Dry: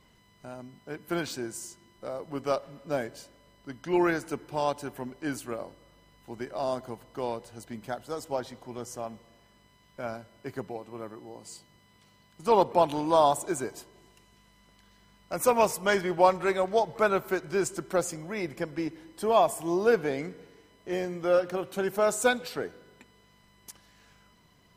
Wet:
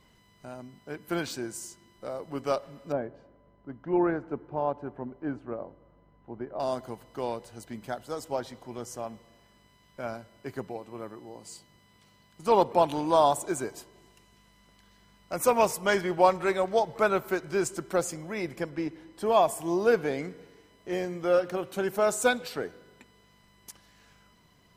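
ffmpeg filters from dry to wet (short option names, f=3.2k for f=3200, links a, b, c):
-filter_complex "[0:a]asettb=1/sr,asplit=3[a][b][c];[a]atrim=end=2.924[d];[b]atrim=start=2.92:end=6.6,asetpts=PTS-STARTPTS,afade=t=in:d=0.004:c=qsin,afade=t=out:st=3.676:d=0.004:c=qsin,lowpass=1.1k[e];[c]atrim=start=6.596[f];[d][e]acrossfade=d=0.004:c1=hsin:c2=qsin[g];[g][f]acrossfade=d=0.004:c1=qsin:c2=hsin,asettb=1/sr,asplit=3[h][i][j];[h]atrim=end=18.694[k];[i]atrim=start=18.69:end=19.26,asetpts=PTS-STARTPTS,afade=t=in:d=0.004:c=qsin,afade=t=out:st=0.566:d=0.004:c=qsin,highshelf=f=5.5k:g=-7[l];[j]atrim=start=19.256[m];[k][l]acrossfade=d=0.004:c1=hsin:c2=qsin[n];[n][m]acrossfade=d=0.004:c1=qsin:c2=hsin"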